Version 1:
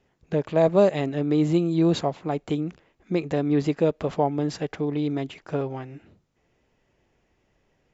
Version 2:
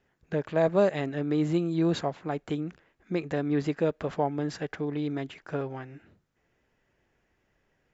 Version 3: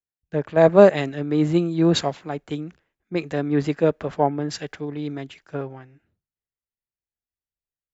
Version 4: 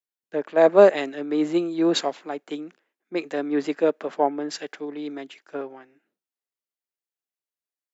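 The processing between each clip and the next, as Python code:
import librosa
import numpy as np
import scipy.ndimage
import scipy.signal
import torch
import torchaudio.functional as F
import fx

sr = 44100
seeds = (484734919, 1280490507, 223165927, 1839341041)

y1 = fx.peak_eq(x, sr, hz=1600.0, db=7.5, octaves=0.63)
y1 = F.gain(torch.from_numpy(y1), -5.0).numpy()
y2 = fx.band_widen(y1, sr, depth_pct=100)
y2 = F.gain(torch.from_numpy(y2), 5.5).numpy()
y3 = scipy.signal.sosfilt(scipy.signal.butter(4, 260.0, 'highpass', fs=sr, output='sos'), y2)
y3 = F.gain(torch.from_numpy(y3), -1.0).numpy()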